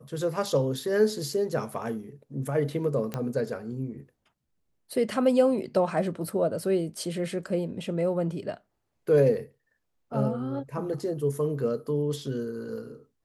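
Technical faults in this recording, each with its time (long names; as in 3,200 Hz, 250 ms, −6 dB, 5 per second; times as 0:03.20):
0:03.14: click −17 dBFS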